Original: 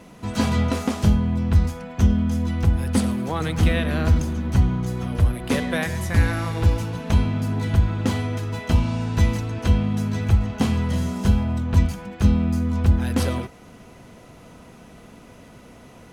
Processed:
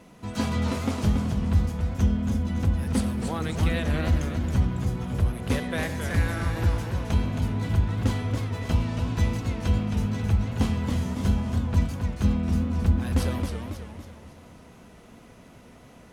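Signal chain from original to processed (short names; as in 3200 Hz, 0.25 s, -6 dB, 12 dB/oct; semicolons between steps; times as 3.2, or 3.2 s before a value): warbling echo 0.274 s, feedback 47%, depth 179 cents, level -6 dB; gain -5.5 dB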